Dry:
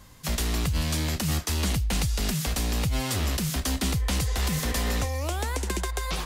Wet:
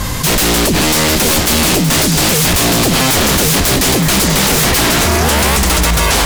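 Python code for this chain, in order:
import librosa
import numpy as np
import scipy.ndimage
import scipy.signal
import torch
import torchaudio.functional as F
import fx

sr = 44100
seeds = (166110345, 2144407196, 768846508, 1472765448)

p1 = fx.rider(x, sr, range_db=10, speed_s=0.5)
p2 = x + (p1 * librosa.db_to_amplitude(-2.0))
p3 = fx.fold_sine(p2, sr, drive_db=15, ceiling_db=-10.0)
p4 = p3 + 10.0 ** (-8.0 / 20.0) * np.pad(p3, (int(919 * sr / 1000.0), 0))[:len(p3)]
y = fx.env_flatten(p4, sr, amount_pct=50)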